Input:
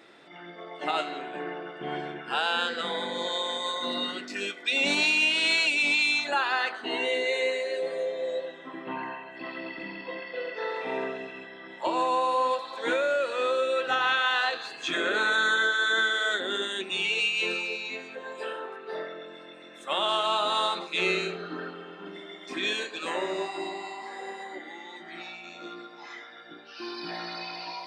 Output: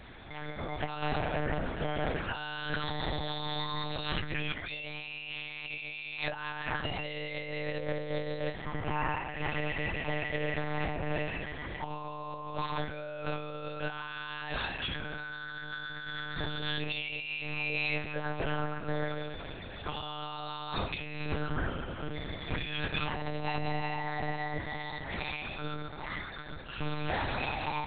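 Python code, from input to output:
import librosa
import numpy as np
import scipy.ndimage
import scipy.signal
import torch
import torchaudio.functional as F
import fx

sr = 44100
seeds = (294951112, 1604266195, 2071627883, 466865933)

y = fx.over_compress(x, sr, threshold_db=-35.0, ratio=-1.0)
y = fx.lpc_monotone(y, sr, seeds[0], pitch_hz=150.0, order=8)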